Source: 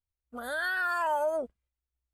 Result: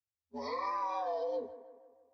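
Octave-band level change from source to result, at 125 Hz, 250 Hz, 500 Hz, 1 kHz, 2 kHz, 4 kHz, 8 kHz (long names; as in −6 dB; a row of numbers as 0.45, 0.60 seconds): can't be measured, −3.0 dB, −4.5 dB, −4.0 dB, −20.5 dB, −8.0 dB, below −10 dB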